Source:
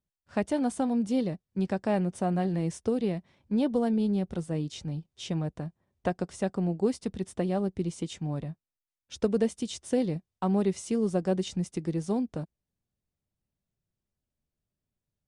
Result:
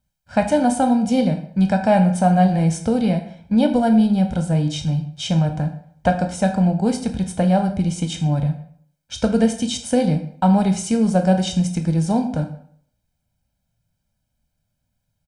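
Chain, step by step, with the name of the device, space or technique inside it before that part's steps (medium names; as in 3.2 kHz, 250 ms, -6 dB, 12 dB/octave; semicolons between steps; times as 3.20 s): microphone above a desk (comb 1.3 ms, depth 80%; reverberation RT60 0.60 s, pre-delay 14 ms, DRR 5.5 dB); trim +9 dB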